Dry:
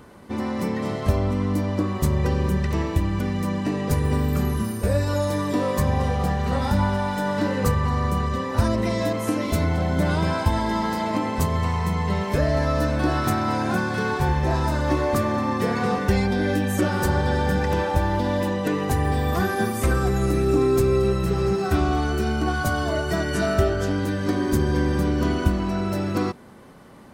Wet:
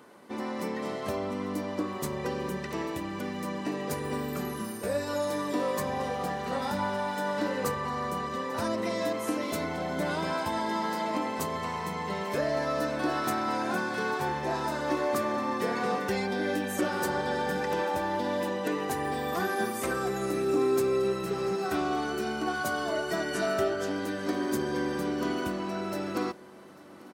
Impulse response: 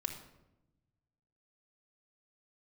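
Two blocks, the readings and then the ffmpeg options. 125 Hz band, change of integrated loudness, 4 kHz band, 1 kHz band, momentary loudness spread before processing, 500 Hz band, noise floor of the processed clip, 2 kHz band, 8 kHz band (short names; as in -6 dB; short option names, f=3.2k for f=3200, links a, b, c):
-18.0 dB, -7.5 dB, -4.5 dB, -4.5 dB, 3 LU, -5.0 dB, -37 dBFS, -4.5 dB, -4.5 dB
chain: -af "highpass=270,aecho=1:1:843|1686|2529|3372:0.0794|0.0437|0.024|0.0132,volume=-4.5dB"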